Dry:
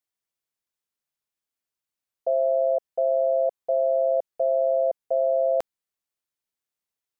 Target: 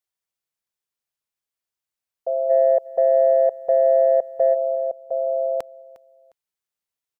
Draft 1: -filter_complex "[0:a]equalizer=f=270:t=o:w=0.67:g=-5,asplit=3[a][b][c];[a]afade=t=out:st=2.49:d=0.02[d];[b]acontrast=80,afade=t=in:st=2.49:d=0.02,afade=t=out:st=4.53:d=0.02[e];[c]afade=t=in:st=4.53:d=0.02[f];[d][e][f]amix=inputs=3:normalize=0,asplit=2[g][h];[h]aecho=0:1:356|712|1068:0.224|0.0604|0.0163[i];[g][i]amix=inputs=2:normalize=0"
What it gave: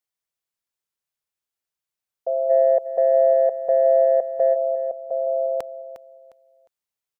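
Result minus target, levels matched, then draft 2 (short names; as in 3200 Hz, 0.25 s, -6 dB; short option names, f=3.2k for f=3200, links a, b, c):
echo-to-direct +7.5 dB
-filter_complex "[0:a]equalizer=f=270:t=o:w=0.67:g=-5,asplit=3[a][b][c];[a]afade=t=out:st=2.49:d=0.02[d];[b]acontrast=80,afade=t=in:st=2.49:d=0.02,afade=t=out:st=4.53:d=0.02[e];[c]afade=t=in:st=4.53:d=0.02[f];[d][e][f]amix=inputs=3:normalize=0,asplit=2[g][h];[h]aecho=0:1:356|712:0.0944|0.0255[i];[g][i]amix=inputs=2:normalize=0"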